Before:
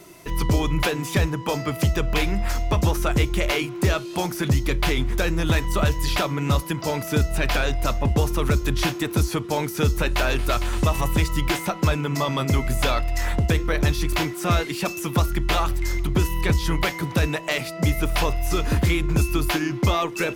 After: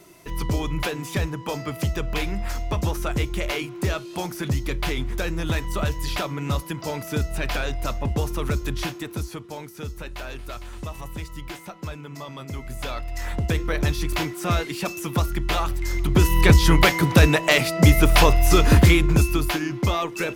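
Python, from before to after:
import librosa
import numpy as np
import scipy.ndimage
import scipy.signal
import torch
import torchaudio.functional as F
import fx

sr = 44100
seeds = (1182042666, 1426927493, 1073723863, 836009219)

y = fx.gain(x, sr, db=fx.line((8.66, -4.0), (9.71, -13.0), (12.48, -13.0), (13.6, -2.0), (15.85, -2.0), (16.4, 7.0), (18.8, 7.0), (19.56, -2.0)))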